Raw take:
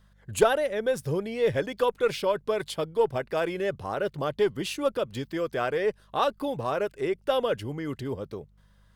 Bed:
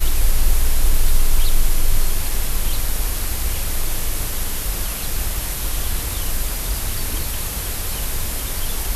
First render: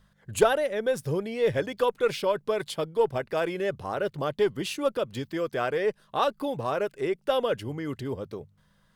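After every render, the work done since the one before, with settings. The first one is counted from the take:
hum removal 50 Hz, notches 2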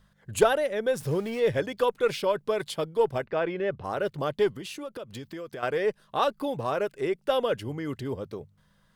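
0:01.00–0:01.40: converter with a step at zero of −40 dBFS
0:03.25–0:03.84: low-pass filter 2,800 Hz
0:04.52–0:05.63: downward compressor 5 to 1, threshold −35 dBFS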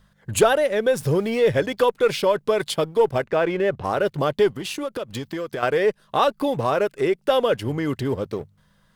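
leveller curve on the samples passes 1
in parallel at 0 dB: downward compressor, threshold −28 dBFS, peak gain reduction 14.5 dB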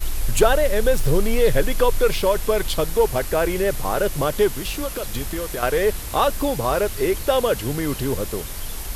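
mix in bed −7 dB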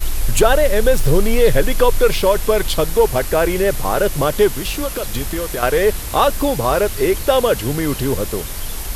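level +4.5 dB
brickwall limiter −2 dBFS, peak gain reduction 3 dB

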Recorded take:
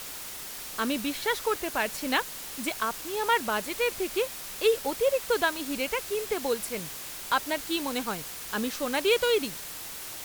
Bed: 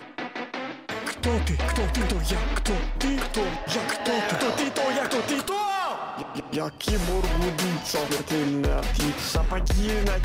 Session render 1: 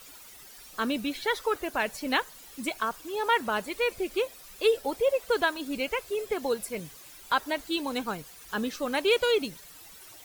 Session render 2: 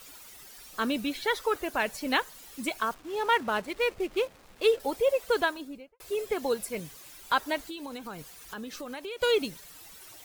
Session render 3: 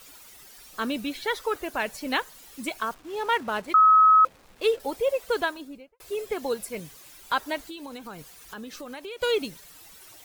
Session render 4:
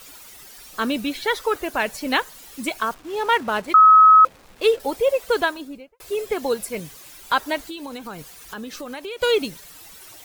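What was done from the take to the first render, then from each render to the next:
broadband denoise 13 dB, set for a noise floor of −40 dBFS
0:02.94–0:04.80: slack as between gear wheels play −38.5 dBFS; 0:05.35–0:06.00: fade out and dull; 0:07.62–0:09.22: downward compressor 5 to 1, threshold −36 dBFS
0:03.74–0:04.25: beep over 1,280 Hz −12.5 dBFS
level +5.5 dB

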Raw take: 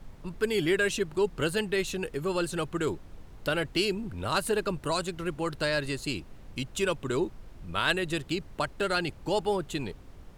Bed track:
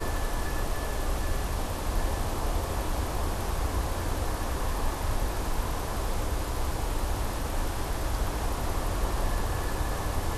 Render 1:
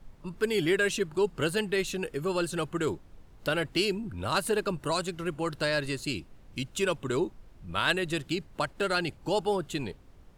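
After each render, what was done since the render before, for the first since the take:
noise reduction from a noise print 6 dB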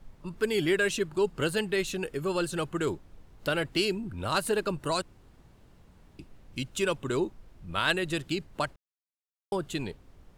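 0:05.02–0:06.19: fill with room tone
0:08.76–0:09.52: silence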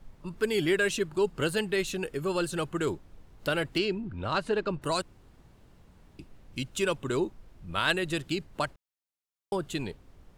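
0:03.78–0:04.82: high-frequency loss of the air 140 metres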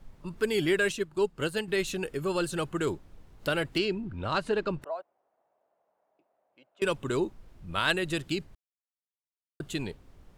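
0:00.92–0:01.68: expander for the loud parts, over −40 dBFS
0:04.84–0:06.82: four-pole ladder band-pass 720 Hz, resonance 65%
0:08.55–0:09.60: silence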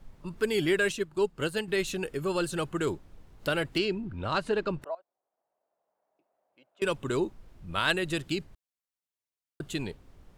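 0:04.95–0:07.05: fade in, from −17 dB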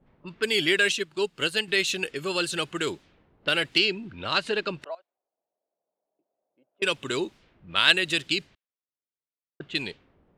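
low-pass that shuts in the quiet parts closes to 530 Hz, open at −29 dBFS
meter weighting curve D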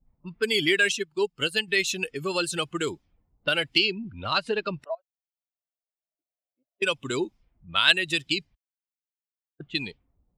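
spectral dynamics exaggerated over time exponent 1.5
in parallel at +0.5 dB: downward compressor, threshold −33 dBFS, peak gain reduction 17.5 dB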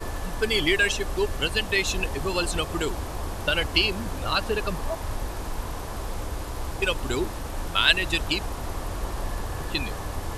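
mix in bed track −2 dB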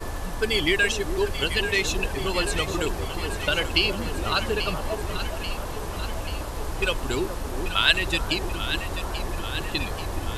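delay that swaps between a low-pass and a high-pass 418 ms, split 1,100 Hz, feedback 78%, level −7.5 dB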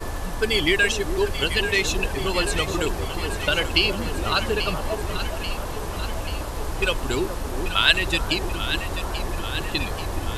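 level +2 dB

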